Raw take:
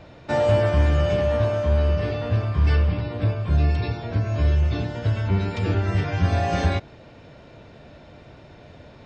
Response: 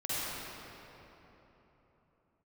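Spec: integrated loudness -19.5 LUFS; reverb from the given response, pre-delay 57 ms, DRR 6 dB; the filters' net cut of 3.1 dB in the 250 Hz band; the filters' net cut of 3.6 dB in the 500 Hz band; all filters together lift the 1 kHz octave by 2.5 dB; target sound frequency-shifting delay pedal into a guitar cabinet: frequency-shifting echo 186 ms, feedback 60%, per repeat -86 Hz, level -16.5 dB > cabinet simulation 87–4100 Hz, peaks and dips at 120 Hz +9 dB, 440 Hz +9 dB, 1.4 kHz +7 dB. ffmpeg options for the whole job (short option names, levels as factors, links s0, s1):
-filter_complex "[0:a]equalizer=f=250:t=o:g=-5,equalizer=f=500:t=o:g=-8,equalizer=f=1000:t=o:g=4,asplit=2[s0][s1];[1:a]atrim=start_sample=2205,adelay=57[s2];[s1][s2]afir=irnorm=-1:irlink=0,volume=0.211[s3];[s0][s3]amix=inputs=2:normalize=0,asplit=7[s4][s5][s6][s7][s8][s9][s10];[s5]adelay=186,afreqshift=-86,volume=0.15[s11];[s6]adelay=372,afreqshift=-172,volume=0.0902[s12];[s7]adelay=558,afreqshift=-258,volume=0.0537[s13];[s8]adelay=744,afreqshift=-344,volume=0.0324[s14];[s9]adelay=930,afreqshift=-430,volume=0.0195[s15];[s10]adelay=1116,afreqshift=-516,volume=0.0116[s16];[s4][s11][s12][s13][s14][s15][s16]amix=inputs=7:normalize=0,highpass=87,equalizer=f=120:t=q:w=4:g=9,equalizer=f=440:t=q:w=4:g=9,equalizer=f=1400:t=q:w=4:g=7,lowpass=f=4100:w=0.5412,lowpass=f=4100:w=1.3066,volume=1.41"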